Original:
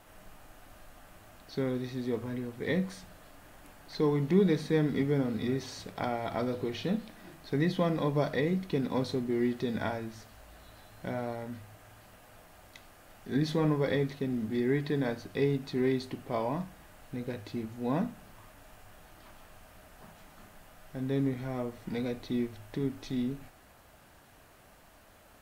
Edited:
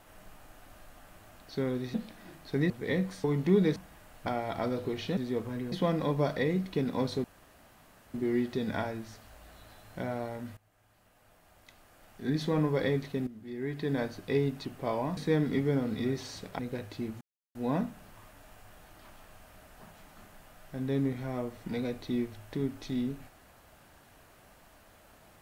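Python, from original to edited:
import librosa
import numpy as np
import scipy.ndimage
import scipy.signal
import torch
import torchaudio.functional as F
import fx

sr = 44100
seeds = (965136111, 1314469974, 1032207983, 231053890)

y = fx.edit(x, sr, fx.swap(start_s=1.94, length_s=0.55, other_s=6.93, other_length_s=0.76),
    fx.cut(start_s=3.03, length_s=1.05),
    fx.swap(start_s=4.6, length_s=1.42, other_s=16.64, other_length_s=0.5),
    fx.insert_room_tone(at_s=9.21, length_s=0.9),
    fx.fade_in_from(start_s=11.64, length_s=2.15, floor_db=-18.5),
    fx.fade_in_from(start_s=14.34, length_s=0.67, curve='qua', floor_db=-14.5),
    fx.cut(start_s=15.72, length_s=0.4),
    fx.insert_silence(at_s=17.76, length_s=0.34), tone=tone)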